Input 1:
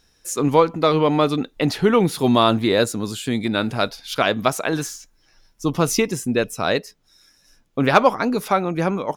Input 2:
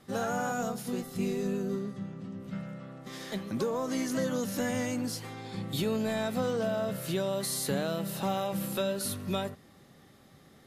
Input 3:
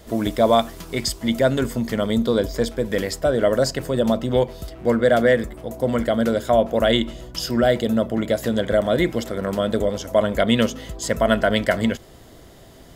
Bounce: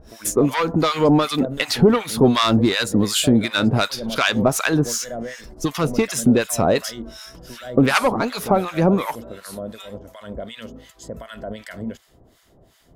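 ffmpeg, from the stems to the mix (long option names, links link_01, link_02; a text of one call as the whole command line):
ffmpeg -i stem1.wav -i stem2.wav -i stem3.wav -filter_complex "[0:a]aeval=exprs='0.75*sin(PI/2*1.58*val(0)/0.75)':channel_layout=same,acompressor=threshold=-20dB:ratio=2.5,volume=0.5dB[link_01];[1:a]highpass=1100,adelay=450,volume=-8.5dB[link_02];[2:a]alimiter=limit=-14dB:level=0:latency=1,volume=-11.5dB[link_03];[link_01][link_02][link_03]amix=inputs=3:normalize=0,acontrast=86,acrossover=split=980[link_04][link_05];[link_04]aeval=exprs='val(0)*(1-1/2+1/2*cos(2*PI*2.7*n/s))':channel_layout=same[link_06];[link_05]aeval=exprs='val(0)*(1-1/2-1/2*cos(2*PI*2.7*n/s))':channel_layout=same[link_07];[link_06][link_07]amix=inputs=2:normalize=0" out.wav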